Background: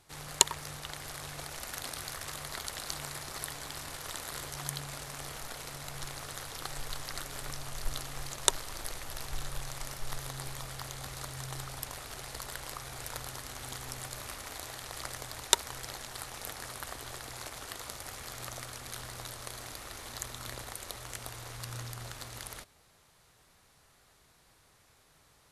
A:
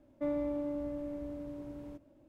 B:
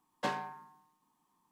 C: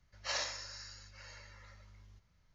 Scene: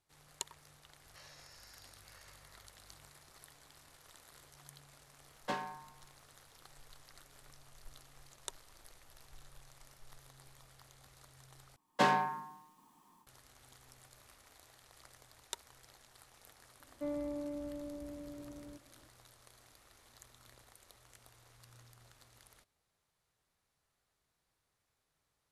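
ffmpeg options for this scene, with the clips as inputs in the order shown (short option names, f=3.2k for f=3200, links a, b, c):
-filter_complex "[2:a]asplit=2[a][b];[0:a]volume=-19dB[c];[3:a]acompressor=threshold=-47dB:ratio=6:attack=3.2:release=140:knee=1:detection=peak[d];[b]dynaudnorm=f=180:g=3:m=14dB[e];[c]asplit=2[f][g];[f]atrim=end=11.764[h];[e]atrim=end=1.51,asetpts=PTS-STARTPTS,volume=-3.5dB[i];[g]atrim=start=13.266[j];[d]atrim=end=2.54,asetpts=PTS-STARTPTS,volume=-8.5dB,afade=t=in:d=0.004:c=hsin,afade=t=out:st=2.536:d=0.004:c=hsin,adelay=910[k];[a]atrim=end=1.51,asetpts=PTS-STARTPTS,volume=-3.5dB,afade=t=in:d=0.004:c=hsin,afade=t=out:st=1.506:d=0.004:c=hsin,adelay=231525S[l];[1:a]atrim=end=2.28,asetpts=PTS-STARTPTS,volume=-5dB,afade=t=in:d=0.004:c=hsin,afade=t=out:st=2.276:d=0.004:c=hsin,adelay=16800[m];[h][i]acrossfade=d=0.004:c1=hsin:c2=hsin[n];[n][j]acrossfade=d=0.004:c1=hsin:c2=hsin[o];[o][k][l][m]amix=inputs=4:normalize=0"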